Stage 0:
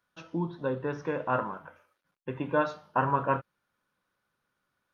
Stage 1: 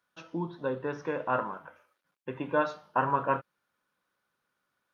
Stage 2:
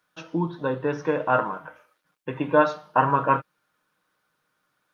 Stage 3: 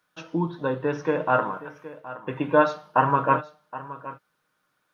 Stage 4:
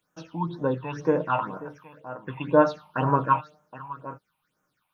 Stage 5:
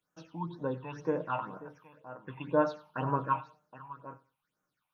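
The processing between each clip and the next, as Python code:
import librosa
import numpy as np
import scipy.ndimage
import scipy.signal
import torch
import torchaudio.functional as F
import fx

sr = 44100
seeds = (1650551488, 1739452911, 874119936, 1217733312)

y1 = fx.low_shelf(x, sr, hz=130.0, db=-10.5)
y2 = y1 + 0.37 * np.pad(y1, (int(6.5 * sr / 1000.0), 0))[:len(y1)]
y2 = y2 * librosa.db_to_amplitude(6.5)
y3 = y2 + 10.0 ** (-16.0 / 20.0) * np.pad(y2, (int(770 * sr / 1000.0), 0))[:len(y2)]
y4 = fx.phaser_stages(y3, sr, stages=6, low_hz=400.0, high_hz=3900.0, hz=2.0, feedback_pct=50)
y5 = fx.echo_feedback(y4, sr, ms=93, feedback_pct=22, wet_db=-20.5)
y5 = y5 * librosa.db_to_amplitude(-8.5)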